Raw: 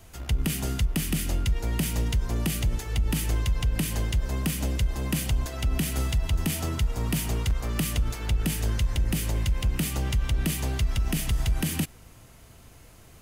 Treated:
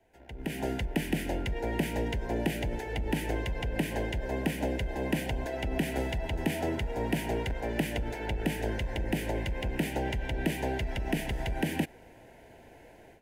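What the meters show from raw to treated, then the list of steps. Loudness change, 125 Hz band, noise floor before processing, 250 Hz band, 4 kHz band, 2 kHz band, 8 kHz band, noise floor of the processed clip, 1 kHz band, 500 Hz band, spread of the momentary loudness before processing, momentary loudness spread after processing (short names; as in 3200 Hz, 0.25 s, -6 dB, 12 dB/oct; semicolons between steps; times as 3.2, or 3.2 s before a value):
-4.5 dB, -8.0 dB, -51 dBFS, -0.5 dB, -6.0 dB, +0.5 dB, -13.0 dB, -54 dBFS, +2.5 dB, +5.5 dB, 2 LU, 3 LU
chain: three-band isolator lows -16 dB, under 280 Hz, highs -20 dB, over 2100 Hz; AGC gain up to 15.5 dB; Butterworth band-stop 1200 Hz, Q 1.9; gain -8.5 dB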